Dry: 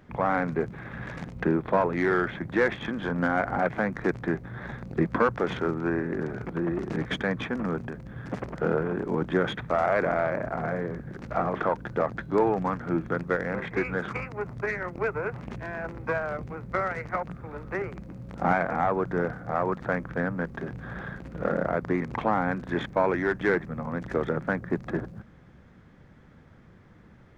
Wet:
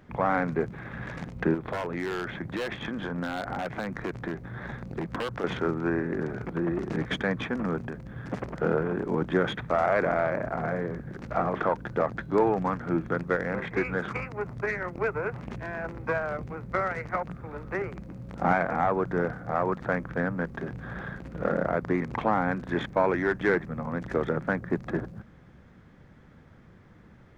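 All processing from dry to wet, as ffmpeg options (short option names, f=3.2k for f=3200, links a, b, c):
-filter_complex "[0:a]asettb=1/sr,asplit=3[a][b][c];[a]atrim=end=1.544[d];[b]atrim=start=1.54:end=5.44,asetpts=PTS-STARTPTS,afade=t=in:d=0.004:c=qsin,afade=t=out:st=3.896:d=0.004:c=qsin,aeval=exprs='0.133*(abs(mod(val(0)/0.133+3,4)-2)-1)':c=same,acompressor=threshold=-28dB:ratio=5:attack=3.2:release=140:knee=1:detection=peak[e];[c]atrim=start=5.436[f];[d][e]acrossfade=d=0.004:c1=hsin:c2=qsin[g];[g][f]acrossfade=d=0.004:c1=qsin:c2=hsin"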